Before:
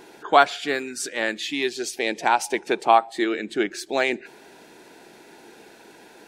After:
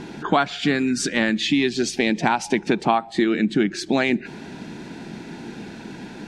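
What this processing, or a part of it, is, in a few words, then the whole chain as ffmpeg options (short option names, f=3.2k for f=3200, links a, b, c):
jukebox: -af "lowpass=6.1k,lowshelf=f=300:t=q:w=1.5:g=13,acompressor=threshold=-25dB:ratio=4,volume=8dB"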